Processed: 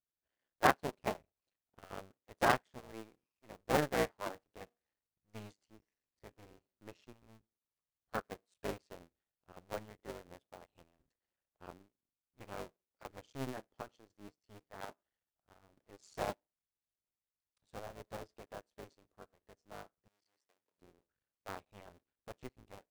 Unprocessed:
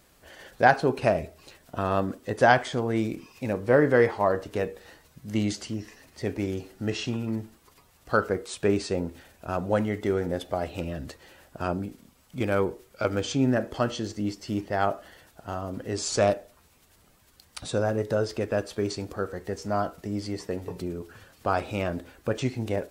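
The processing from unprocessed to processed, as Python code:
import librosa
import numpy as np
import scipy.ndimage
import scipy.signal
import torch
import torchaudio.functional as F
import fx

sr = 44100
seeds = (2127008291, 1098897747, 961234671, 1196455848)

y = fx.cycle_switch(x, sr, every=2, mode='muted')
y = fx.highpass(y, sr, hz=1300.0, slope=6, at=(20.08, 20.78))
y = fx.upward_expand(y, sr, threshold_db=-41.0, expansion=2.5)
y = y * 10.0 ** (-4.5 / 20.0)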